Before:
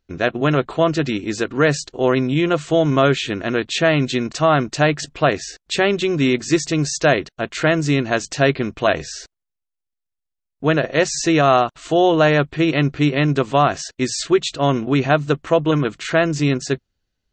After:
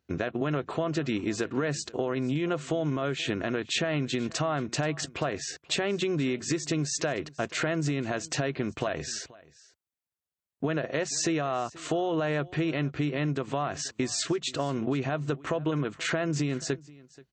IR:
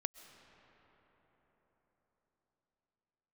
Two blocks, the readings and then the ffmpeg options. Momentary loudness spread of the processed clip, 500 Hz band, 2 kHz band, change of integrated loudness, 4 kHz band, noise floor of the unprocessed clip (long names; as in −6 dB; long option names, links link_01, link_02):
4 LU, −12.5 dB, −12.0 dB, −11.5 dB, −9.0 dB, −81 dBFS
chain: -filter_complex "[0:a]highpass=frequency=71:width=0.5412,highpass=frequency=71:width=1.3066,equalizer=frequency=4500:width_type=o:width=1.5:gain=-3.5,alimiter=limit=-13.5dB:level=0:latency=1:release=204,acompressor=threshold=-25dB:ratio=6,asplit=2[link_01][link_02];[link_02]aecho=0:1:481:0.0794[link_03];[link_01][link_03]amix=inputs=2:normalize=0"